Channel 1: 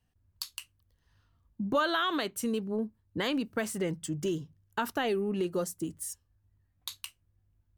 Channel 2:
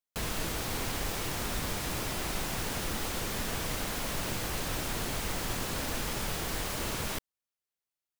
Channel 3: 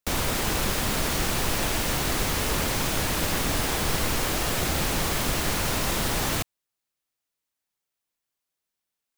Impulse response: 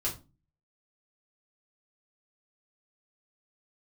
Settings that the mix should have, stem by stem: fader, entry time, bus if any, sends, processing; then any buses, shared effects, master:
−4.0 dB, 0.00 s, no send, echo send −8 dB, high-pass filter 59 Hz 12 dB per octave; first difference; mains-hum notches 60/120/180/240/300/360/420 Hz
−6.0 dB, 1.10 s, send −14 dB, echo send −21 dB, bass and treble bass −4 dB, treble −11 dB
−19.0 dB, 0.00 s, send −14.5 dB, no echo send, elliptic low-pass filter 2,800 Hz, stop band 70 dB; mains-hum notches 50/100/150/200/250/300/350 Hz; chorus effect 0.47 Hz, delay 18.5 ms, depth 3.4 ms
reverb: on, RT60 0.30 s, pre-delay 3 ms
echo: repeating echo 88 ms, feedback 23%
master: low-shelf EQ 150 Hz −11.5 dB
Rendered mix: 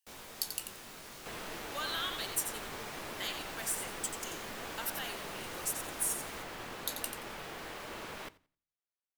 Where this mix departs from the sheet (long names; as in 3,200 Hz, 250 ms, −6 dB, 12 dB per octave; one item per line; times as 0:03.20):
stem 1 −4.0 dB → +3.5 dB
stem 3: missing elliptic low-pass filter 2,800 Hz, stop band 70 dB
reverb return −6.5 dB